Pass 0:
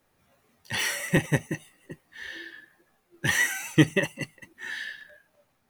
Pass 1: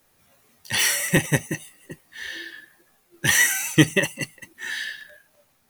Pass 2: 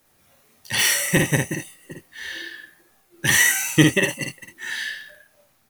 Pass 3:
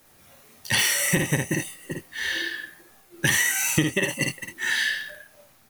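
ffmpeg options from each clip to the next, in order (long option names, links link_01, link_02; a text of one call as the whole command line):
ffmpeg -i in.wav -af "highshelf=frequency=3500:gain=10,volume=2.5dB" out.wav
ffmpeg -i in.wav -af "aecho=1:1:53|76:0.668|0.224" out.wav
ffmpeg -i in.wav -af "acompressor=threshold=-24dB:ratio=12,volume=5.5dB" out.wav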